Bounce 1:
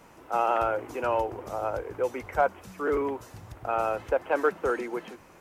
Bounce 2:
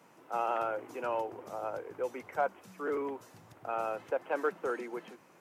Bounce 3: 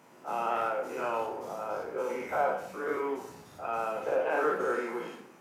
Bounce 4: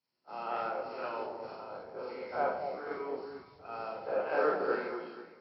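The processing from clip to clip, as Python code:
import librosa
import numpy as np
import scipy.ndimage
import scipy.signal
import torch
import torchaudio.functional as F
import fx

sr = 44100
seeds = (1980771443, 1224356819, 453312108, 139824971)

y1 = scipy.signal.sosfilt(scipy.signal.butter(4, 130.0, 'highpass', fs=sr, output='sos'), x)
y1 = F.gain(torch.from_numpy(y1), -7.0).numpy()
y2 = fx.spec_dilate(y1, sr, span_ms=120)
y2 = fx.rev_plate(y2, sr, seeds[0], rt60_s=0.64, hf_ratio=0.85, predelay_ms=0, drr_db=2.0)
y2 = F.gain(torch.from_numpy(y2), -3.0).numpy()
y3 = fx.freq_compress(y2, sr, knee_hz=3900.0, ratio=4.0)
y3 = fx.echo_alternate(y3, sr, ms=229, hz=820.0, feedback_pct=51, wet_db=-2)
y3 = fx.band_widen(y3, sr, depth_pct=100)
y3 = F.gain(torch.from_numpy(y3), -6.0).numpy()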